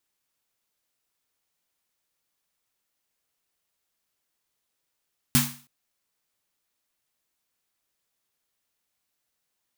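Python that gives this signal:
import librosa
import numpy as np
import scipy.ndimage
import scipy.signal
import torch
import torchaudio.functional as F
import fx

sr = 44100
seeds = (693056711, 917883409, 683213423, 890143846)

y = fx.drum_snare(sr, seeds[0], length_s=0.32, hz=140.0, second_hz=240.0, noise_db=1, noise_from_hz=820.0, decay_s=0.37, noise_decay_s=0.41)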